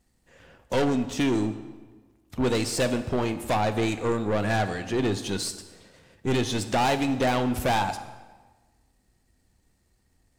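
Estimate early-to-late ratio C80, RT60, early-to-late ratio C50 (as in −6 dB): 13.0 dB, 1.3 s, 11.5 dB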